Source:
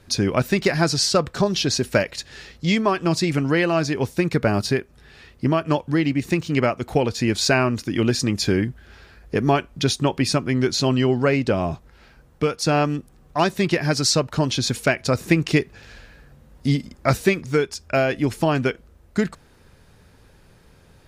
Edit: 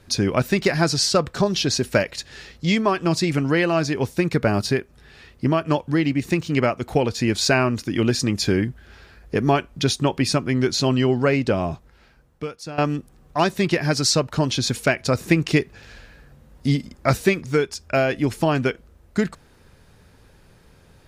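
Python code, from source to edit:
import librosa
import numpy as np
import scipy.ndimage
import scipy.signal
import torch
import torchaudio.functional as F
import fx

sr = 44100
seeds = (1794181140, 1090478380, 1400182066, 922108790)

y = fx.edit(x, sr, fx.fade_out_to(start_s=11.52, length_s=1.26, floor_db=-17.0), tone=tone)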